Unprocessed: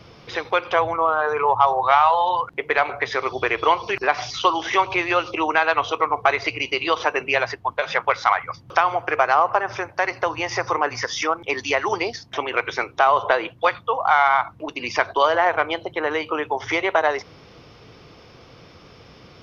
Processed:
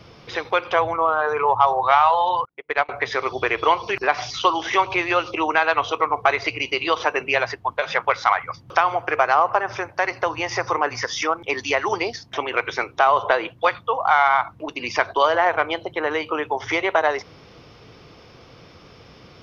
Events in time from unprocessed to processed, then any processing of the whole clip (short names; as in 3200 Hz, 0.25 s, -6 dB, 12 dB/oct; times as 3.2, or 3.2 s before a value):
2.45–2.89 upward expander 2.5:1, over -37 dBFS